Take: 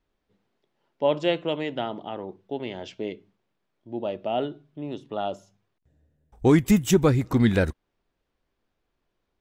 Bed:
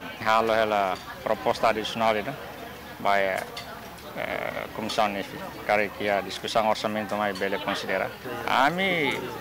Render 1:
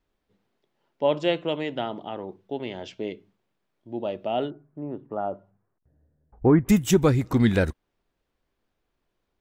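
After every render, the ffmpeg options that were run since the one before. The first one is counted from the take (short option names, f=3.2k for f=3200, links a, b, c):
-filter_complex "[0:a]asettb=1/sr,asplit=3[a][b][c];[a]atrim=end=4.504[d];[b]atrim=start=4.5:end=6.69,asetpts=PTS-STARTPTS,afade=t=in:d=0.004:c=qsin,afade=t=out:st=2.186:d=0.004:c=qsin,lowpass=f=1.6k:w=0.5412,lowpass=f=1.6k:w=1.3066[e];[c]atrim=start=6.686[f];[d][e]acrossfade=d=0.004:c1=hsin:c2=qsin[g];[g][f]acrossfade=d=0.004:c1=qsin:c2=hsin"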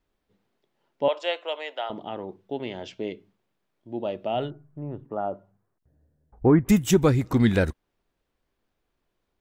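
-filter_complex "[0:a]asettb=1/sr,asplit=3[a][b][c];[a]atrim=end=1.084[d];[b]atrim=start=1.08:end=1.9,asetpts=PTS-STARTPTS,afade=t=in:d=0.004:c=qsin,afade=t=out:st=0.816:d=0.004:c=qsin,highpass=f=550:w=0.5412,highpass=f=550:w=1.3066[e];[c]atrim=start=1.896[f];[d][e]acrossfade=d=0.004:c1=hsin:c2=qsin[g];[g][f]acrossfade=d=0.004:c1=qsin:c2=hsin,asplit=3[h][i][j];[h]afade=t=out:st=4.34:d=0.02[k];[i]asubboost=boost=7.5:cutoff=98,afade=t=in:st=4.34:d=0.02,afade=t=out:st=5.04:d=0.02[l];[j]afade=t=in:st=5.04:d=0.02[m];[k][l][m]amix=inputs=3:normalize=0"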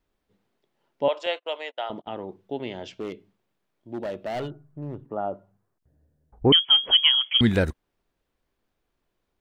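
-filter_complex "[0:a]asettb=1/sr,asplit=3[a][b][c];[a]atrim=end=1.264[d];[b]atrim=start=1.26:end=2.25,asetpts=PTS-STARTPTS,afade=t=in:d=0.004:c=qsin,afade=t=out:st=0.986:d=0.004:c=qsin,agate=range=-32dB:threshold=-39dB:ratio=16:release=100:detection=peak[e];[c]atrim=start=2.246[f];[d][e]acrossfade=d=0.004:c1=hsin:c2=qsin[g];[g][f]acrossfade=d=0.004:c1=qsin:c2=hsin,asettb=1/sr,asplit=3[h][i][j];[h]atrim=end=2.954[k];[i]atrim=start=2.95:end=5.07,asetpts=PTS-STARTPTS,afade=t=in:d=0.004:c=qsin,afade=t=out:st=2.116:d=0.004:c=qsin,volume=26.5dB,asoftclip=hard,volume=-26.5dB[l];[j]atrim=start=5.066[m];[k][l]acrossfade=d=0.004:c1=hsin:c2=qsin[n];[n][m]acrossfade=d=0.004:c1=qsin:c2=hsin,asettb=1/sr,asplit=3[o][p][q];[o]atrim=end=6.524[r];[p]atrim=start=6.52:end=7.41,asetpts=PTS-STARTPTS,afade=t=in:d=0.004:c=qsin,afade=t=out:st=0.886:d=0.004:c=qsin,lowpass=f=2.9k:t=q:w=0.5098,lowpass=f=2.9k:t=q:w=0.6013,lowpass=f=2.9k:t=q:w=0.9,lowpass=f=2.9k:t=q:w=2.563,afreqshift=-3400[s];[q]atrim=start=7.406[t];[r][s]acrossfade=d=0.004:c1=hsin:c2=qsin[u];[u][t]acrossfade=d=0.004:c1=qsin:c2=hsin"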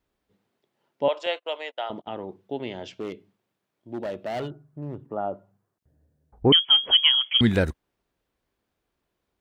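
-af "highpass=41"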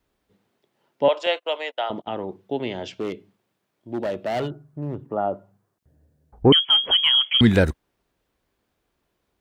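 -filter_complex "[0:a]acrossover=split=560|1800[a][b][c];[c]alimiter=limit=-16.5dB:level=0:latency=1:release=35[d];[a][b][d]amix=inputs=3:normalize=0,acontrast=23"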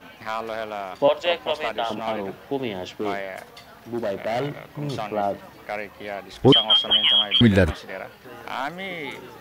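-filter_complex "[1:a]volume=-7.5dB[a];[0:a][a]amix=inputs=2:normalize=0"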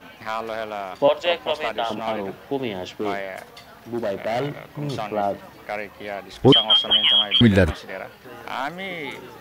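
-af "volume=1dB"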